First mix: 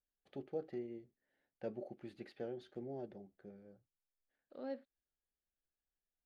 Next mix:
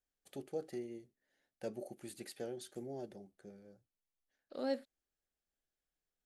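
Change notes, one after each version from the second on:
second voice +6.5 dB; master: remove air absorption 310 m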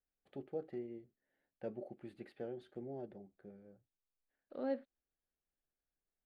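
master: add air absorption 480 m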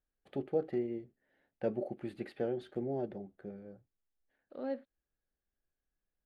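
first voice +9.5 dB

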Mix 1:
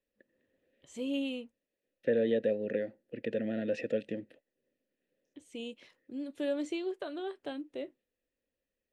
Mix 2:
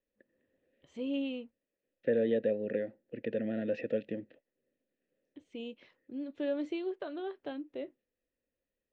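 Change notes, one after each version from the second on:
master: add air absorption 210 m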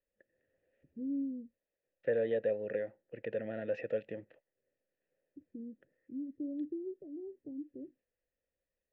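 first voice: add inverse Chebyshev low-pass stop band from 1500 Hz, stop band 70 dB; second voice: add graphic EQ 250/1000/4000 Hz -12/+5/-8 dB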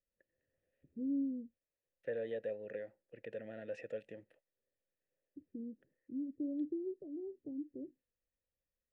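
second voice -8.5 dB; master: remove air absorption 210 m

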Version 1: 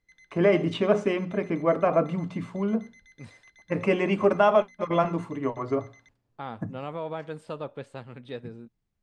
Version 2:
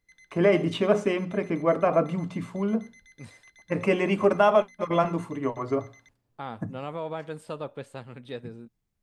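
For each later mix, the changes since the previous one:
master: remove air absorption 54 m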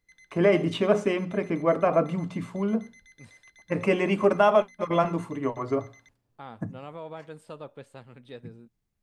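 second voice -6.0 dB

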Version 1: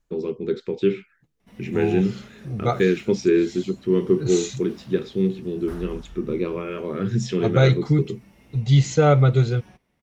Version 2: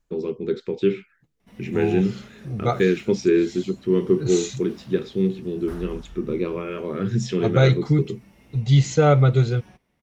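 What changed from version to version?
none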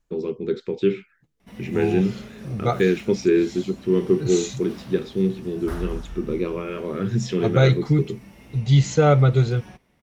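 background +6.5 dB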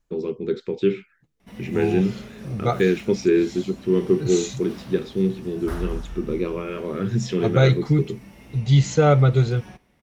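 reverb: on, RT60 0.60 s

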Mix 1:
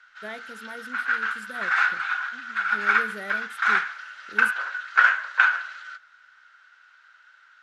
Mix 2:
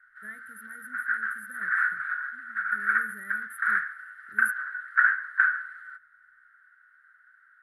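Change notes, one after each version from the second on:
master: add EQ curve 120 Hz 0 dB, 170 Hz -6 dB, 240 Hz -9 dB, 830 Hz -29 dB, 1200 Hz -9 dB, 1800 Hz +1 dB, 2500 Hz -26 dB, 6700 Hz -28 dB, 10000 Hz +6 dB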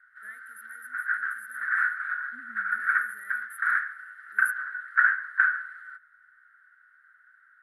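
first voice: add HPF 1300 Hz 6 dB/oct; second voice +7.5 dB; master: add bell 160 Hz -15 dB 0.22 oct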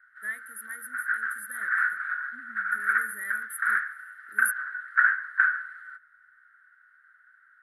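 first voice +10.5 dB

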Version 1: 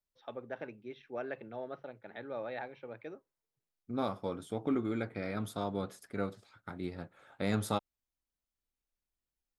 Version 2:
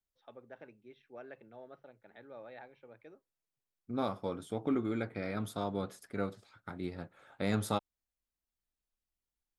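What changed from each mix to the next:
first voice -9.5 dB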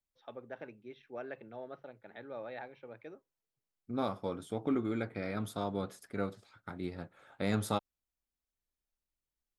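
first voice +6.0 dB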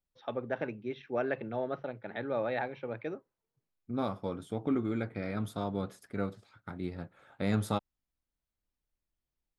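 first voice +10.5 dB; master: add tone controls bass +4 dB, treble -3 dB

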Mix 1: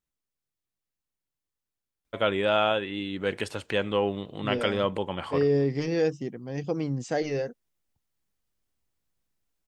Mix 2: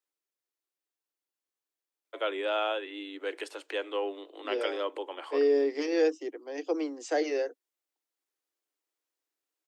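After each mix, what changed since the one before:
first voice -6.0 dB; master: add steep high-pass 290 Hz 96 dB/oct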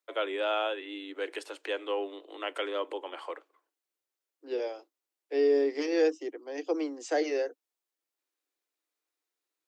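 first voice: entry -2.05 s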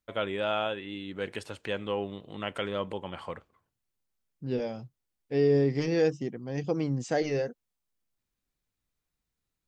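master: remove steep high-pass 290 Hz 96 dB/oct

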